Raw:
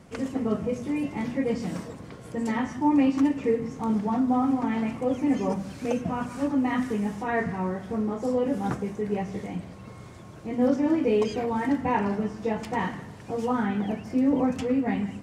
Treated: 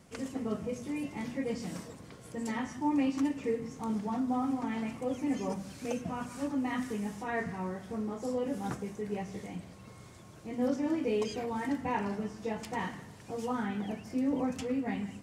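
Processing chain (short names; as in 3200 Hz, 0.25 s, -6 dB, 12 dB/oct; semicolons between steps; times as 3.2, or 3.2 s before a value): high shelf 3500 Hz +9 dB; gain -8 dB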